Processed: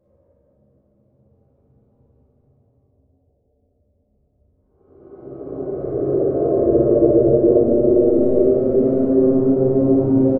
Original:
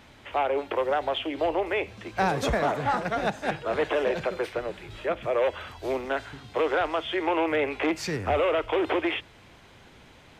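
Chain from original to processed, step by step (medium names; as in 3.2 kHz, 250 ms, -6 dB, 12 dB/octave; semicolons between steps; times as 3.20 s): sine folder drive 15 dB, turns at -13.5 dBFS; steep low-pass 610 Hz 72 dB/octave; gate -23 dBFS, range -40 dB; transient shaper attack +3 dB, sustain +8 dB; Paulstretch 36×, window 0.10 s, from 5.66 s; bass shelf 84 Hz -8.5 dB; early reflections 15 ms -5 dB, 59 ms -3.5 dB; Schroeder reverb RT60 0.73 s, combs from 30 ms, DRR -5.5 dB; trim -5 dB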